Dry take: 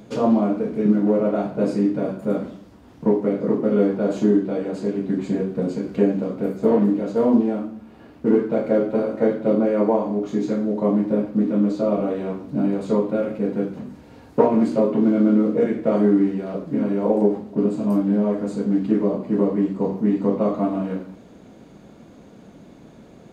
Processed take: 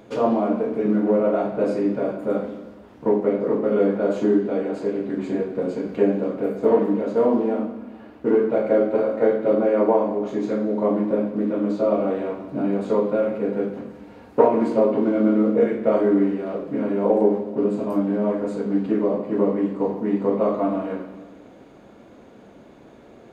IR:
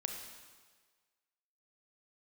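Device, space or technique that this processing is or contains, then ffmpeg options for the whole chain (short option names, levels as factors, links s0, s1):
filtered reverb send: -filter_complex "[0:a]asplit=2[s0][s1];[s1]highpass=f=180:w=0.5412,highpass=f=180:w=1.3066,lowpass=3500[s2];[1:a]atrim=start_sample=2205[s3];[s2][s3]afir=irnorm=-1:irlink=0,volume=1.06[s4];[s0][s4]amix=inputs=2:normalize=0,volume=0.631"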